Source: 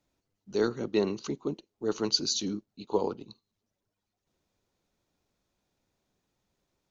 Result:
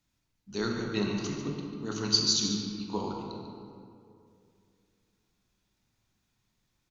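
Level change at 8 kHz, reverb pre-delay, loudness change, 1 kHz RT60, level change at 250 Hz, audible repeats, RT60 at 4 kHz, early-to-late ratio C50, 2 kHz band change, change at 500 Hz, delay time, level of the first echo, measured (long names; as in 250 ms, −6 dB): can't be measured, 16 ms, +0.5 dB, 2.3 s, +0.5 dB, 1, 1.3 s, 1.0 dB, +3.0 dB, −6.0 dB, 144 ms, −11.5 dB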